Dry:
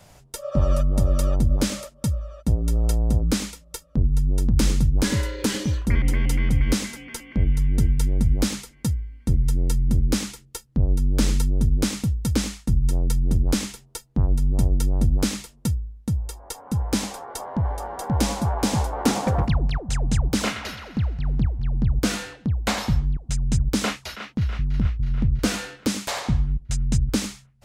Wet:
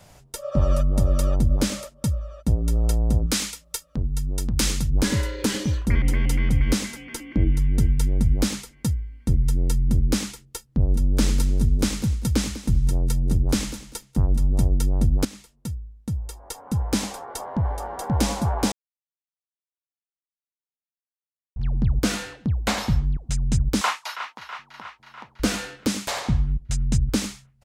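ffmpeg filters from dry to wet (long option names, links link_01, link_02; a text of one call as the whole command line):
ffmpeg -i in.wav -filter_complex "[0:a]asettb=1/sr,asplit=3[link_01][link_02][link_03];[link_01]atrim=end=3.264[link_04];[link_02]atrim=start=3.26:end=4.9,asetpts=PTS-STARTPTS,afade=type=in:duration=0.004:curve=qsin,afade=type=out:start_time=1.636:duration=0.004:curve=qsin,tiltshelf=frequency=890:gain=-5.5[link_05];[link_03]atrim=start=4.896[link_06];[link_04][link_05]acrossfade=duration=0.004:curve1=hsin:curve2=qsin[link_07];[link_07][link_06]acrossfade=duration=0.004:curve1=qsin:curve2=hsin,asettb=1/sr,asplit=3[link_08][link_09][link_10];[link_08]atrim=end=7.114[link_11];[link_09]atrim=start=7.11:end=7.6,asetpts=PTS-STARTPTS,afade=type=in:duration=0.004:curve=qsin,afade=type=out:start_time=0.486:duration=0.004:curve=qsin,equalizer=frequency=310:width_type=o:width=0.31:gain=12.5[link_12];[link_10]atrim=start=7.596[link_13];[link_11][link_12]acrossfade=duration=0.004:curve1=hsin:curve2=qsin[link_14];[link_14][link_13]acrossfade=duration=0.004:curve1=qsin:curve2=hsin,asplit=3[link_15][link_16][link_17];[link_15]afade=type=out:start_time=10.8:duration=0.02[link_18];[link_16]aecho=1:1:197|394:0.2|0.0439,afade=type=in:start_time=10.8:duration=0.02,afade=type=out:start_time=14.64:duration=0.02[link_19];[link_17]afade=type=in:start_time=14.64:duration=0.02[link_20];[link_18][link_19][link_20]amix=inputs=3:normalize=0,asettb=1/sr,asplit=3[link_21][link_22][link_23];[link_21]atrim=end=23.814[link_24];[link_22]atrim=start=23.81:end=25.4,asetpts=PTS-STARTPTS,afade=type=in:duration=0.004:curve=qsin,afade=type=out:start_time=1.586:duration=0.004:curve=qsin,highpass=frequency=950:width_type=q:width=3.8[link_25];[link_23]atrim=start=25.396[link_26];[link_24][link_25]acrossfade=duration=0.004:curve1=hsin:curve2=qsin[link_27];[link_27][link_26]acrossfade=duration=0.004:curve1=qsin:curve2=hsin,asplit=4[link_28][link_29][link_30][link_31];[link_28]atrim=end=15.25,asetpts=PTS-STARTPTS,afade=type=out:start_time=15.246:duration=0.004:curve=hsin:silence=0.188365[link_32];[link_29]atrim=start=15.25:end=18.72,asetpts=PTS-STARTPTS,afade=type=in:duration=1.44:silence=0.188365,afade=type=out:start_time=3.466:duration=0.004:curve=hsin[link_33];[link_30]atrim=start=18.72:end=21.56,asetpts=PTS-STARTPTS,volume=0[link_34];[link_31]atrim=start=21.56,asetpts=PTS-STARTPTS,afade=type=in:duration=0.004:curve=hsin[link_35];[link_32][link_33][link_34][link_35]concat=n=4:v=0:a=1" out.wav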